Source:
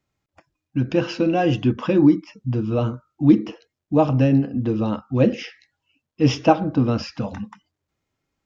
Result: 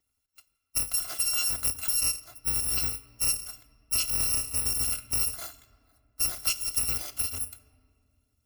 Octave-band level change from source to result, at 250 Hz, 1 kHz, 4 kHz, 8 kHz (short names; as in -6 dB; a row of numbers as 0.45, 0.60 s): -32.0 dB, -19.5 dB, +4.0 dB, n/a